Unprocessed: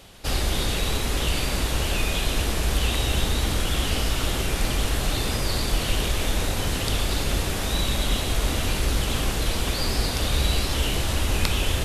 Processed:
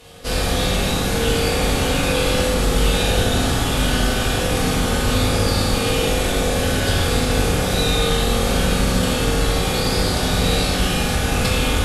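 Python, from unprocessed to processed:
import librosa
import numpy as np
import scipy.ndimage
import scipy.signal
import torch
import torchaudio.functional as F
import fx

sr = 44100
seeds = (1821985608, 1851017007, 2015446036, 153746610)

y = fx.pitch_keep_formants(x, sr, semitones=-3.5)
y = fx.rev_fdn(y, sr, rt60_s=2.2, lf_ratio=1.0, hf_ratio=0.45, size_ms=12.0, drr_db=-8.0)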